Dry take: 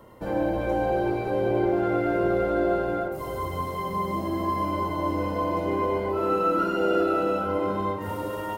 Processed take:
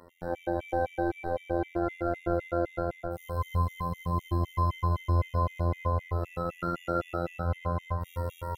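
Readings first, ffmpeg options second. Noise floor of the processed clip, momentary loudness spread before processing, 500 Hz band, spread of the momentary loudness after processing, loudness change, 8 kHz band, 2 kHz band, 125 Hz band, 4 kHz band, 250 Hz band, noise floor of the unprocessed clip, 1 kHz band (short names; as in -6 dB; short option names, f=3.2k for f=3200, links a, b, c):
-54 dBFS, 7 LU, -8.0 dB, 6 LU, -5.5 dB, n/a, -6.5 dB, +4.0 dB, -8.0 dB, -8.5 dB, -33 dBFS, -6.0 dB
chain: -af "afftfilt=real='hypot(re,im)*cos(PI*b)':imag='0':win_size=2048:overlap=0.75,asubboost=boost=7:cutoff=110,afftfilt=real='re*gt(sin(2*PI*3.9*pts/sr)*(1-2*mod(floor(b*sr/1024/1900),2)),0)':imag='im*gt(sin(2*PI*3.9*pts/sr)*(1-2*mod(floor(b*sr/1024/1900),2)),0)':win_size=1024:overlap=0.75"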